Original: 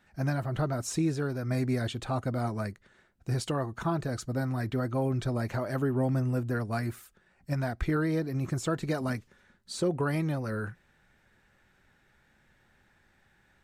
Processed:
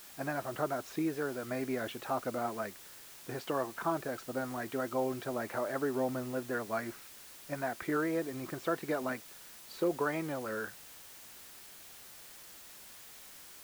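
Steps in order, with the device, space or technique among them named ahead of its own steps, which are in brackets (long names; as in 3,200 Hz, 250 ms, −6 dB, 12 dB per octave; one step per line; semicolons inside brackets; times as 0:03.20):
wax cylinder (band-pass filter 350–2,500 Hz; tape wow and flutter; white noise bed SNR 15 dB)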